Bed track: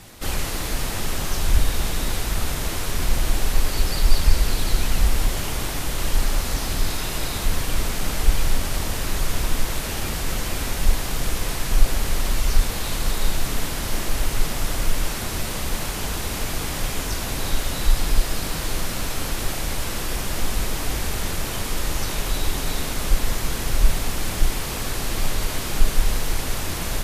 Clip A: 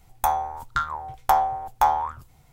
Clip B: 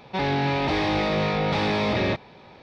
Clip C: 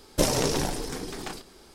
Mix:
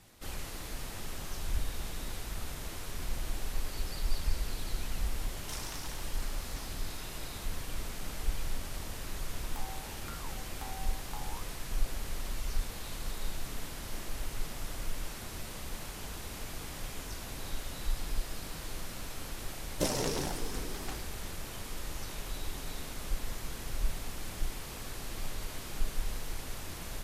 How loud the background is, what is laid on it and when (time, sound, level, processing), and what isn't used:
bed track -15 dB
5.3 add C -15 dB + inverse Chebyshev high-pass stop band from 450 Hz
9.32 add A -18 dB + compressor, threshold -25 dBFS
19.62 add C -8 dB
not used: B

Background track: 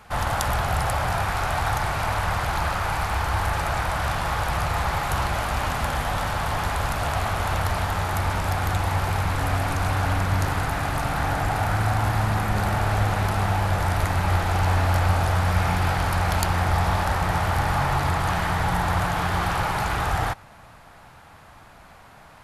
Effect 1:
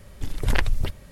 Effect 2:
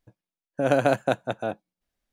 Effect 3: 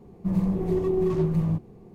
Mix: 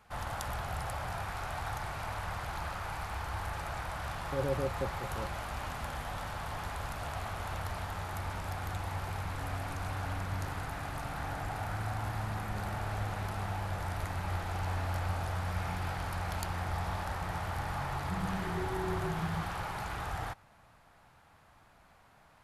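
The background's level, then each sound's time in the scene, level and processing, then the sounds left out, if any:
background track -13.5 dB
3.73 add 2 -5.5 dB + rippled Chebyshev low-pass 560 Hz, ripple 9 dB
17.86 add 3 -14 dB + mismatched tape noise reduction encoder only
not used: 1

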